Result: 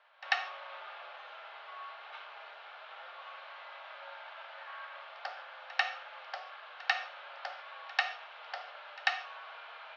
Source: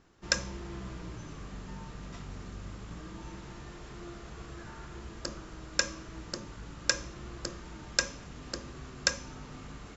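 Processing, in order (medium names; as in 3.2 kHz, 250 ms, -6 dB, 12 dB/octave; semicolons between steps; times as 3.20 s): reverse echo 93 ms -22 dB; gated-style reverb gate 180 ms falling, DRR 7 dB; mistuned SSB +210 Hz 500–3500 Hz; band-stop 1.9 kHz, Q 12; trim +4 dB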